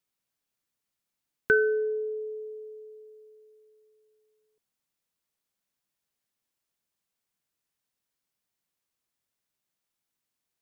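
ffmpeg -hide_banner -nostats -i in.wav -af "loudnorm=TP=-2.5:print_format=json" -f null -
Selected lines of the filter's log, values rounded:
"input_i" : "-27.6",
"input_tp" : "-10.9",
"input_lra" : "10.7",
"input_thresh" : "-41.5",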